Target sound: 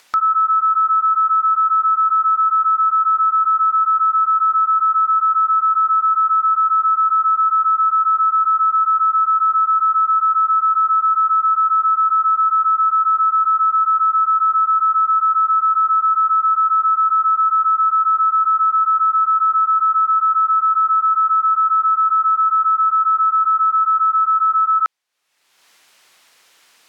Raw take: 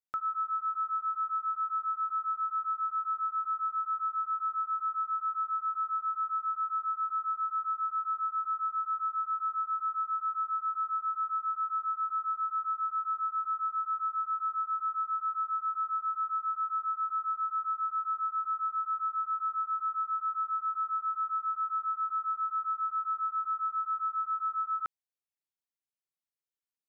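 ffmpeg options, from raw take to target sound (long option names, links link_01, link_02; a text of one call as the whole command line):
ffmpeg -i in.wav -af "apsyclip=32dB,highpass=frequency=1200:poles=1,acompressor=mode=upward:threshold=-16dB:ratio=2.5,aemphasis=mode=reproduction:type=50fm,volume=-8.5dB" out.wav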